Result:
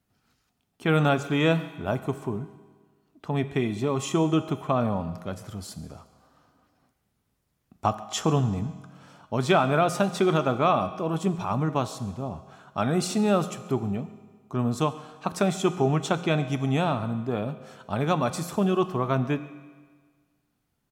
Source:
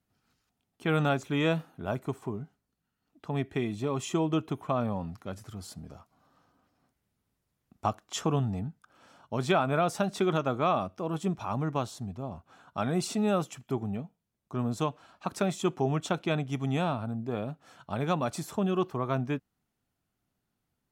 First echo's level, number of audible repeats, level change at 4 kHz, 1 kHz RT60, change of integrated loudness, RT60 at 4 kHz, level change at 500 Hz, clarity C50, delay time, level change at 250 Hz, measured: -22.0 dB, 1, +5.0 dB, 1.6 s, +5.0 dB, 1.5 s, +5.0 dB, 13.0 dB, 138 ms, +4.5 dB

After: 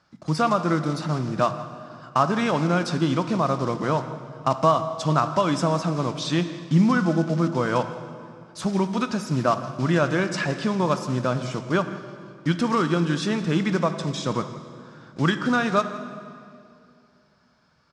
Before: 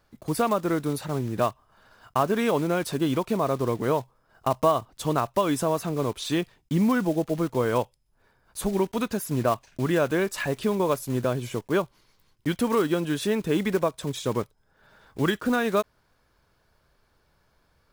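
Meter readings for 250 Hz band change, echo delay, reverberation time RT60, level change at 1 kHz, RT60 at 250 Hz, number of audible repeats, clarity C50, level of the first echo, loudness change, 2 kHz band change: +3.0 dB, 163 ms, 2.5 s, +4.0 dB, 2.8 s, 1, 10.0 dB, -18.0 dB, +2.5 dB, +4.0 dB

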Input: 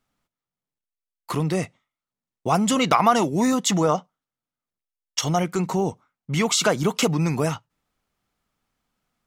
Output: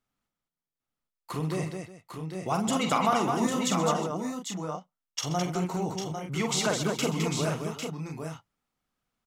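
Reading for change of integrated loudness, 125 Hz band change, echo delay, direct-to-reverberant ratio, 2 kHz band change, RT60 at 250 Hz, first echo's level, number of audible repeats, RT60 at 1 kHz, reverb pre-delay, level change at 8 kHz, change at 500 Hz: -7.0 dB, -5.5 dB, 45 ms, no reverb, -6.0 dB, no reverb, -6.0 dB, 6, no reverb, no reverb, -6.0 dB, -6.0 dB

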